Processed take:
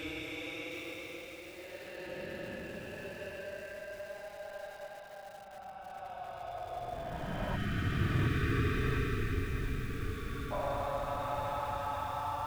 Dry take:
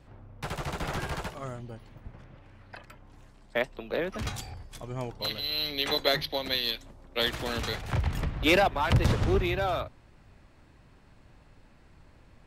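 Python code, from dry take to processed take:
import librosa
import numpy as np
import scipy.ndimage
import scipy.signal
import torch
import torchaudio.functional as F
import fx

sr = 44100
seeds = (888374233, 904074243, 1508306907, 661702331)

y = fx.law_mismatch(x, sr, coded='mu')
y = fx.graphic_eq_15(y, sr, hz=(100, 630, 1600), db=(6, 7, 5))
y = fx.over_compress(y, sr, threshold_db=-33.0, ratio=-1.0)
y = fx.chopper(y, sr, hz=9.6, depth_pct=65, duty_pct=75)
y = fx.paulstretch(y, sr, seeds[0], factor=38.0, window_s=0.05, from_s=8.49)
y = y + 10.0 ** (-18.5 / 20.0) * np.pad(y, (int(856 * sr / 1000.0), 0))[:len(y)]
y = fx.spec_erase(y, sr, start_s=7.56, length_s=2.95, low_hz=480.0, high_hz=1100.0)
y = fx.echo_crushed(y, sr, ms=713, feedback_pct=55, bits=8, wet_db=-9.0)
y = F.gain(torch.from_numpy(y), 1.0).numpy()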